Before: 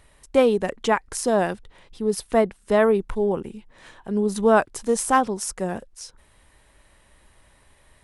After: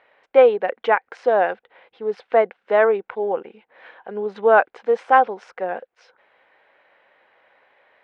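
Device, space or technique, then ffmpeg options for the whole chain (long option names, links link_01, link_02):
phone earpiece: -af "highpass=430,equalizer=frequency=500:width_type=q:width=4:gain=9,equalizer=frequency=760:width_type=q:width=4:gain=8,equalizer=frequency=1500:width_type=q:width=4:gain=7,equalizer=frequency=2200:width_type=q:width=4:gain=5,lowpass=frequency=3200:width=0.5412,lowpass=frequency=3200:width=1.3066,volume=-1dB"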